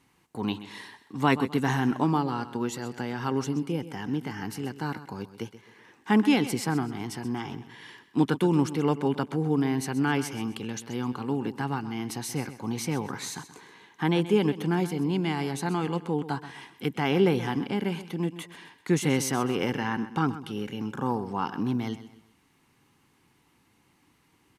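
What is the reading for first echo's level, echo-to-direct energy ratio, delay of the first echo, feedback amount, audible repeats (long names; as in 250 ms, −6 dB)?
−14.0 dB, −13.5 dB, 129 ms, 36%, 3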